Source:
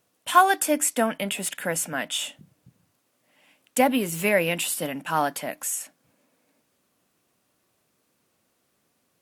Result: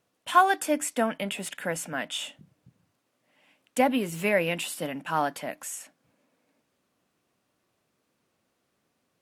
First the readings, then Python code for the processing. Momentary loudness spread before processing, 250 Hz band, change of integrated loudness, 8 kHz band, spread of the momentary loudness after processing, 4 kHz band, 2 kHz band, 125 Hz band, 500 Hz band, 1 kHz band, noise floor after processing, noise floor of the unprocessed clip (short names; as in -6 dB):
10 LU, -2.5 dB, -3.5 dB, -8.0 dB, 13 LU, -4.0 dB, -3.0 dB, -2.5 dB, -2.5 dB, -2.5 dB, -76 dBFS, -71 dBFS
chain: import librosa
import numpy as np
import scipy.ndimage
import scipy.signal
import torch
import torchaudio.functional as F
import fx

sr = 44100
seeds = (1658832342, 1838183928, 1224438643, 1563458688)

y = fx.high_shelf(x, sr, hz=7400.0, db=-10.0)
y = y * 10.0 ** (-2.5 / 20.0)